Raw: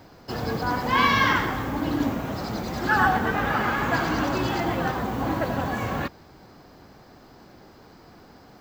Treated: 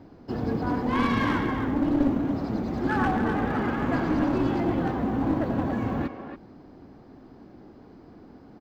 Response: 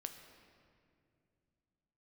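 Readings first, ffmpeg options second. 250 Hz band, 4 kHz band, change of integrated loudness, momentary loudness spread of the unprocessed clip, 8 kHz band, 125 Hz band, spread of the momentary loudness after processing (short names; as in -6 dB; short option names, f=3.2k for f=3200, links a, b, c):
+3.5 dB, -11.0 dB, -1.5 dB, 10 LU, under -10 dB, -0.5 dB, 7 LU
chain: -filter_complex "[0:a]firequalizer=gain_entry='entry(160,0);entry(260,6);entry(510,-3);entry(1300,-8);entry(9300,-21)':delay=0.05:min_phase=1,asplit=2[a][b];[b]adelay=280,highpass=300,lowpass=3.4k,asoftclip=type=hard:threshold=-18dB,volume=-7dB[c];[a][c]amix=inputs=2:normalize=0,aeval=exprs='clip(val(0),-1,0.0841)':c=same"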